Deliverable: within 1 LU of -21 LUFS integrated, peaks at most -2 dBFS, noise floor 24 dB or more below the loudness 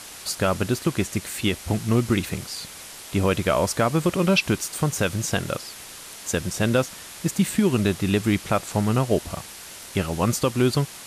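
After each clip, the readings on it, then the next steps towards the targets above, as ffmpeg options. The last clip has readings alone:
noise floor -41 dBFS; noise floor target -48 dBFS; loudness -24.0 LUFS; peak -7.5 dBFS; loudness target -21.0 LUFS
-> -af "afftdn=nr=7:nf=-41"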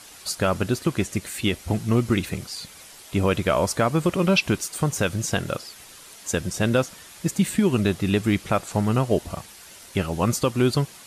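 noise floor -46 dBFS; noise floor target -48 dBFS
-> -af "afftdn=nr=6:nf=-46"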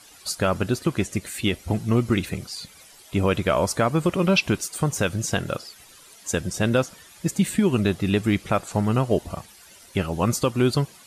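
noise floor -50 dBFS; loudness -24.0 LUFS; peak -7.5 dBFS; loudness target -21.0 LUFS
-> -af "volume=3dB"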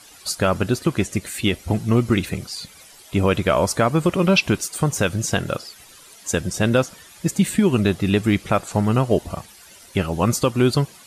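loudness -21.0 LUFS; peak -4.5 dBFS; noise floor -47 dBFS

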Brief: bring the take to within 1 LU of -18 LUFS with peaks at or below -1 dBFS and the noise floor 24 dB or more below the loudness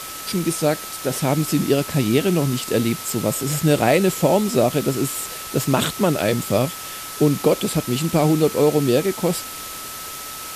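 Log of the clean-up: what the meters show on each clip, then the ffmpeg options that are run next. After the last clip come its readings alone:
steady tone 1300 Hz; tone level -37 dBFS; noise floor -33 dBFS; noise floor target -45 dBFS; loudness -20.5 LUFS; peak -4.5 dBFS; loudness target -18.0 LUFS
-> -af "bandreject=f=1.3k:w=30"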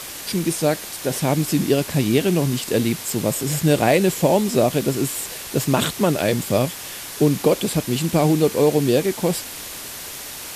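steady tone none; noise floor -34 dBFS; noise floor target -44 dBFS
-> -af "afftdn=nr=10:nf=-34"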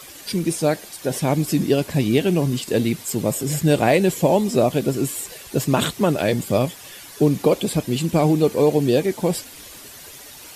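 noise floor -41 dBFS; noise floor target -45 dBFS
-> -af "afftdn=nr=6:nf=-41"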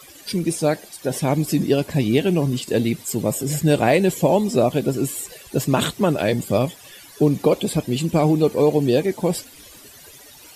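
noise floor -45 dBFS; loudness -20.5 LUFS; peak -5.0 dBFS; loudness target -18.0 LUFS
-> -af "volume=2.5dB"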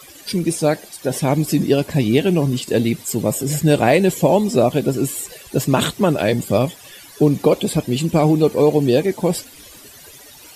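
loudness -18.0 LUFS; peak -2.5 dBFS; noise floor -42 dBFS

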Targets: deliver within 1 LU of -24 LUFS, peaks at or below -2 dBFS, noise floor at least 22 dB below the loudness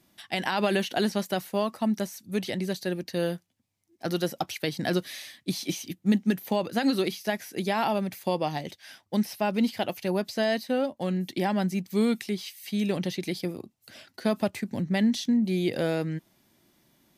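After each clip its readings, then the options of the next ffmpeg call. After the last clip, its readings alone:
loudness -28.5 LUFS; peak -11.5 dBFS; loudness target -24.0 LUFS
-> -af "volume=4.5dB"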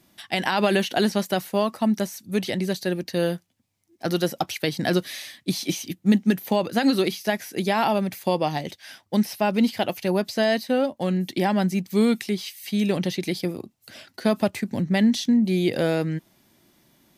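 loudness -24.0 LUFS; peak -7.0 dBFS; noise floor -67 dBFS

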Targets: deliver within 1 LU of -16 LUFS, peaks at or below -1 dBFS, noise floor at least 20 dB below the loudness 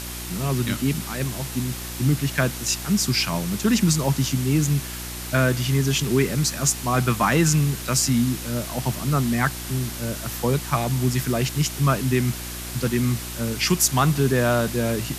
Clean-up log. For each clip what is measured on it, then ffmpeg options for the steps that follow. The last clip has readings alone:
hum 60 Hz; harmonics up to 360 Hz; hum level -35 dBFS; noise floor -33 dBFS; noise floor target -43 dBFS; loudness -22.5 LUFS; peak -6.0 dBFS; loudness target -16.0 LUFS
-> -af "bandreject=f=60:t=h:w=4,bandreject=f=120:t=h:w=4,bandreject=f=180:t=h:w=4,bandreject=f=240:t=h:w=4,bandreject=f=300:t=h:w=4,bandreject=f=360:t=h:w=4"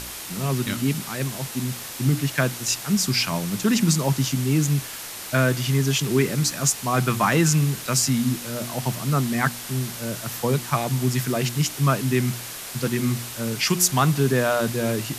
hum none; noise floor -35 dBFS; noise floor target -43 dBFS
-> -af "afftdn=nr=8:nf=-35"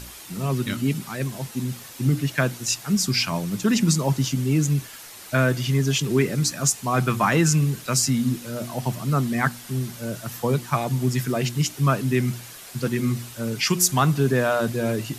noise floor -42 dBFS; noise floor target -43 dBFS
-> -af "afftdn=nr=6:nf=-42"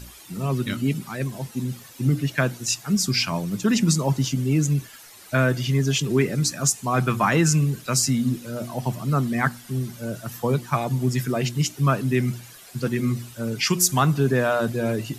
noise floor -46 dBFS; loudness -23.5 LUFS; peak -6.0 dBFS; loudness target -16.0 LUFS
-> -af "volume=7.5dB,alimiter=limit=-1dB:level=0:latency=1"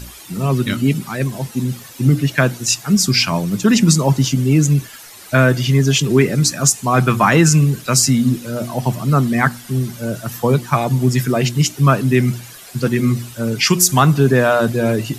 loudness -16.0 LUFS; peak -1.0 dBFS; noise floor -38 dBFS

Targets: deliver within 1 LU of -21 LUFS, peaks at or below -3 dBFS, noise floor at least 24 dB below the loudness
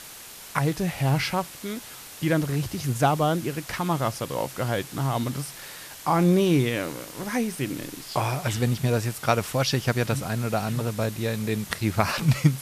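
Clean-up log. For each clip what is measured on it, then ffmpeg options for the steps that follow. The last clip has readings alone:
noise floor -43 dBFS; noise floor target -50 dBFS; loudness -26.0 LUFS; peak -6.0 dBFS; loudness target -21.0 LUFS
-> -af "afftdn=nr=7:nf=-43"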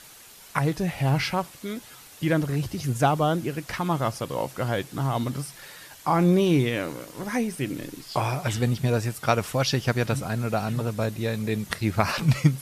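noise floor -48 dBFS; noise floor target -50 dBFS
-> -af "afftdn=nr=6:nf=-48"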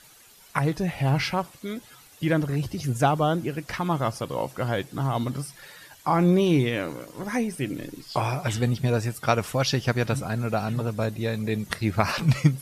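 noise floor -52 dBFS; loudness -26.0 LUFS; peak -6.5 dBFS; loudness target -21.0 LUFS
-> -af "volume=5dB,alimiter=limit=-3dB:level=0:latency=1"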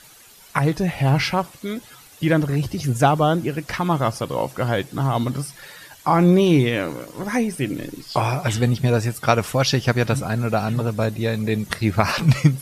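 loudness -21.0 LUFS; peak -3.0 dBFS; noise floor -47 dBFS

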